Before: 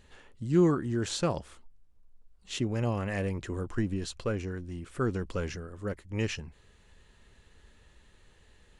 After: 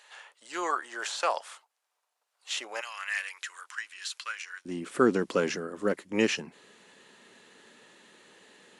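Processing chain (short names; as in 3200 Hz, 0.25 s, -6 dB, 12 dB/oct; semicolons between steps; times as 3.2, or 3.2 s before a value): HPF 690 Hz 24 dB/oct, from 2.81 s 1400 Hz, from 4.65 s 210 Hz; de-esser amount 100%; gain +8.5 dB; WMA 128 kbps 32000 Hz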